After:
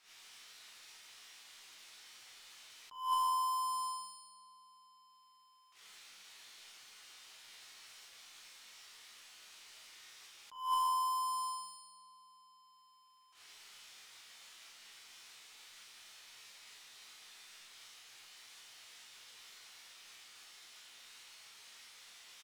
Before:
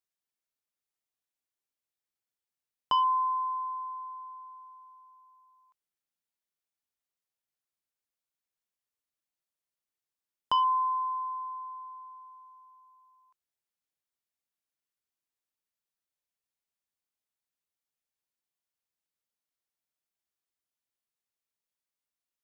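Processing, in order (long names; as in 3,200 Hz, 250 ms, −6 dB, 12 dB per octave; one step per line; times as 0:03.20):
spike at every zero crossing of −35.5 dBFS
noise gate −39 dBFS, range −22 dB
low-pass that shuts in the quiet parts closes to 2,900 Hz, open at −30 dBFS
high-shelf EQ 2,400 Hz −6.5 dB
notch filter 570 Hz, Q 13
tuned comb filter 59 Hz, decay 1 s, harmonics all, mix 80%
hum removal 59.12 Hz, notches 30
power curve on the samples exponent 0.7
double-tracking delay 42 ms −7.5 dB
single-tap delay 220 ms −13 dB
convolution reverb RT60 0.30 s, pre-delay 9 ms, DRR 5.5 dB
level that may rise only so fast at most 120 dB per second
level +9 dB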